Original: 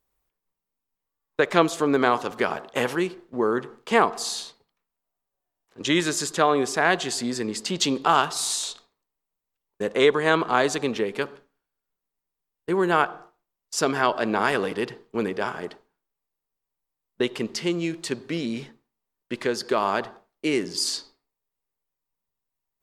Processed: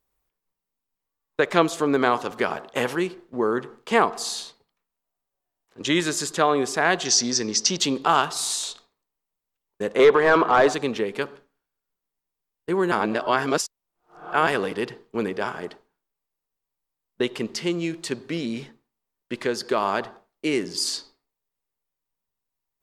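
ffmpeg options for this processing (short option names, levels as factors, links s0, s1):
-filter_complex "[0:a]asettb=1/sr,asplit=3[s0][s1][s2];[s0]atrim=end=7.054[s3];[s1]atrim=start=7.05:end=7.77,asetpts=PTS-STARTPTS,afade=t=in:d=0.004:c=qsin,afade=t=out:st=0.716:d=0.004:c=qsin,lowpass=f=5800:t=q:w=14[s4];[s2]atrim=start=7.766[s5];[s3][s4]acrossfade=d=0.004:c1=hsin:c2=qsin[s6];[s6][s5]acrossfade=d=0.004:c1=qsin:c2=hsin,asettb=1/sr,asplit=3[s7][s8][s9];[s7]atrim=end=9.994[s10];[s8]atrim=start=9.99:end=10.74,asetpts=PTS-STARTPTS,afade=t=in:d=0.004:c=qsin,afade=t=out:st=0.746:d=0.004:c=qsin,asplit=2[s11][s12];[s12]highpass=f=720:p=1,volume=8.91,asoftclip=type=tanh:threshold=0.708[s13];[s11][s13]amix=inputs=2:normalize=0,lowpass=f=1000:p=1,volume=0.501[s14];[s9]atrim=start=10.736[s15];[s10][s14]acrossfade=d=0.004:c1=hsin:c2=qsin[s16];[s16][s15]acrossfade=d=0.004:c1=qsin:c2=hsin,asplit=3[s17][s18][s19];[s17]atrim=end=12.922[s20];[s18]atrim=start=12.918:end=14.472,asetpts=PTS-STARTPTS,areverse[s21];[s19]atrim=start=14.468[s22];[s20][s21]acrossfade=d=0.004:c1=hsin:c2=hsin[s23];[s23][s22]acrossfade=d=0.004:c1=hsin:c2=hsin"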